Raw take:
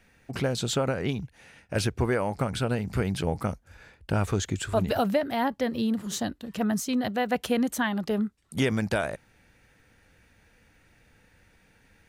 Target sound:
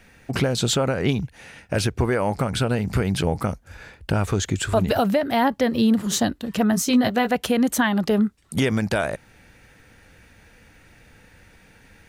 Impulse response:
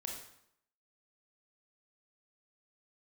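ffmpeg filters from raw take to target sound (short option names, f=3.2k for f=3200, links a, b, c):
-filter_complex "[0:a]asettb=1/sr,asplit=3[a][b][c];[a]atrim=end=6.724[d];[b]atrim=start=6.72:end=7.31,asetpts=PTS-STARTPTS,afade=t=in:d=0.004:c=qsin,afade=t=out:st=0.586:d=0.004:c=qsin,asplit=2[e][f];[f]adelay=17,volume=-6dB[g];[e][g]amix=inputs=2:normalize=0,atrim=end_sample=26019[h];[c]atrim=start=7.306[i];[d][h]acrossfade=d=0.004:c1=hsin:c2=qsin[j];[j][i]acrossfade=d=0.004:c1=qsin:c2=hsin,alimiter=limit=-19dB:level=0:latency=1:release=254,volume=9dB"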